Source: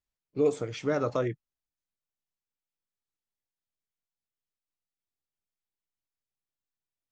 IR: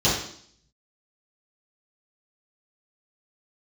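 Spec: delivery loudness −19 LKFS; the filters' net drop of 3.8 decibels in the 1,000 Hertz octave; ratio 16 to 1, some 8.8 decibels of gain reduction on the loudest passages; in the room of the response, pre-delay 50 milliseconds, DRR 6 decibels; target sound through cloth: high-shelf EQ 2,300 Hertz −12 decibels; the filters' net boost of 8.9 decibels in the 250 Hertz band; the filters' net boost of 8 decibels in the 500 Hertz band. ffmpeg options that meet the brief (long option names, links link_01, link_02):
-filter_complex "[0:a]equalizer=frequency=250:width_type=o:gain=8.5,equalizer=frequency=500:width_type=o:gain=8.5,equalizer=frequency=1000:width_type=o:gain=-6,acompressor=threshold=-19dB:ratio=16,asplit=2[link_01][link_02];[1:a]atrim=start_sample=2205,adelay=50[link_03];[link_02][link_03]afir=irnorm=-1:irlink=0,volume=-22.5dB[link_04];[link_01][link_04]amix=inputs=2:normalize=0,highshelf=frequency=2300:gain=-12,volume=6.5dB"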